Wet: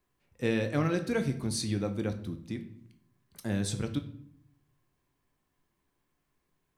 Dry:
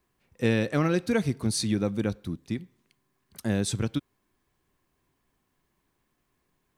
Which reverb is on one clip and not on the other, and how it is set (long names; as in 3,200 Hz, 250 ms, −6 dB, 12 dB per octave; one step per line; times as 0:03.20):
rectangular room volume 120 cubic metres, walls mixed, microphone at 0.38 metres
level −5 dB